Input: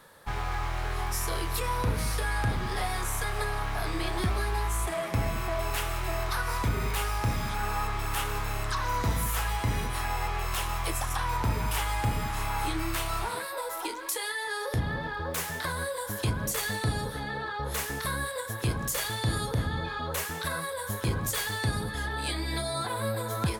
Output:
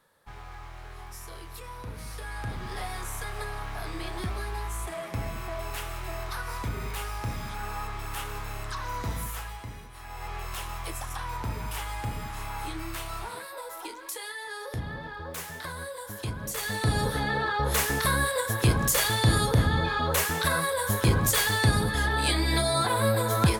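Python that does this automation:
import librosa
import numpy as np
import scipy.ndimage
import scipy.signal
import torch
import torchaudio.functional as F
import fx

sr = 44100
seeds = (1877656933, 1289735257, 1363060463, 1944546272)

y = fx.gain(x, sr, db=fx.line((1.83, -12.0), (2.73, -4.5), (9.23, -4.5), (9.91, -16.0), (10.32, -5.0), (16.41, -5.0), (17.07, 6.5)))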